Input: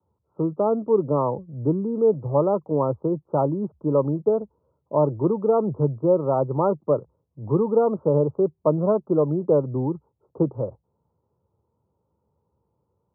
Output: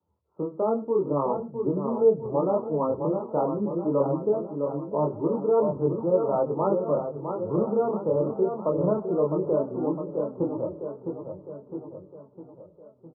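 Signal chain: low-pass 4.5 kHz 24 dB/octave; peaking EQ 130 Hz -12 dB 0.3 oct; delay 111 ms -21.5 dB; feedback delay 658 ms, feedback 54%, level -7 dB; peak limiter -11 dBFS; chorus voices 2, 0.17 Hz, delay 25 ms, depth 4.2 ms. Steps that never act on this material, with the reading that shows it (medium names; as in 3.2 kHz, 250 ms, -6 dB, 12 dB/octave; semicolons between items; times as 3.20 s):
low-pass 4.5 kHz: input has nothing above 1.4 kHz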